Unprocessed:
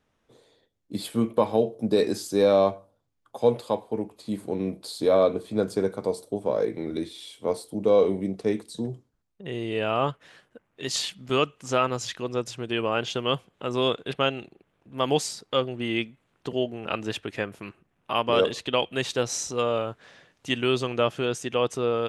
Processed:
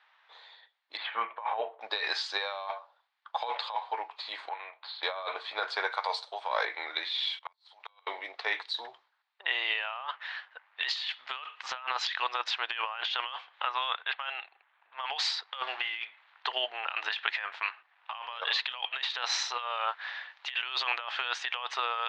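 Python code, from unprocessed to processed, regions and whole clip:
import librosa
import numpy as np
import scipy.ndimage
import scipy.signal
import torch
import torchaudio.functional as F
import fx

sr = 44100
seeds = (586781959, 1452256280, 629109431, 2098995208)

y = fx.chain(x, sr, fx.lowpass(hz=2500.0, slope=24),
    fx.peak_eq(hz=210.0, db=7.5, octaves=0.2), at=(0.97, 1.81))
y = fx.chain(y, sr, fx.highpass(hz=780.0, slope=12),
    fx.air_absorb(metres=430.0), at=(4.49, 5.03))
y = fx.chain(y, sr, fx.highpass(hz=450.0, slope=12),
    fx.high_shelf(hz=4500.0, db=8.0), at=(5.91, 6.65))
y = fx.chain(y, sr, fx.highpass(hz=1100.0, slope=12),
    fx.level_steps(step_db=20),
    fx.gate_flip(shuts_db=-32.0, range_db=-32), at=(7.38, 8.07))
y = fx.chain(y, sr, fx.highpass(hz=850.0, slope=6),
    fx.spacing_loss(db_at_10k=24), at=(13.65, 15.1))
y = fx.chain(y, sr, fx.law_mismatch(coded='mu'),
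    fx.doubler(ms=35.0, db=-12.0), at=(15.63, 16.03))
y = scipy.signal.sosfilt(scipy.signal.ellip(3, 1.0, 60, [850.0, 4100.0], 'bandpass', fs=sr, output='sos'), y)
y = fx.peak_eq(y, sr, hz=1800.0, db=3.5, octaves=0.48)
y = fx.over_compress(y, sr, threshold_db=-40.0, ratio=-1.0)
y = y * librosa.db_to_amplitude(6.5)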